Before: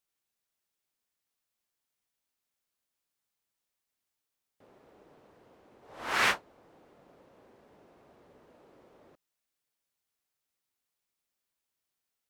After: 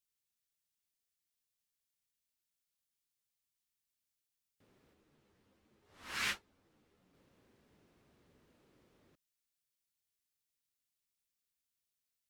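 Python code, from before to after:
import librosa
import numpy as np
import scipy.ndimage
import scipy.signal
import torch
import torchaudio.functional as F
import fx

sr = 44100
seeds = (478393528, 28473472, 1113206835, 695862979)

y = fx.peak_eq(x, sr, hz=690.0, db=-14.5, octaves=2.3)
y = fx.ensemble(y, sr, at=(4.93, 7.13), fade=0.02)
y = y * 10.0 ** (-2.0 / 20.0)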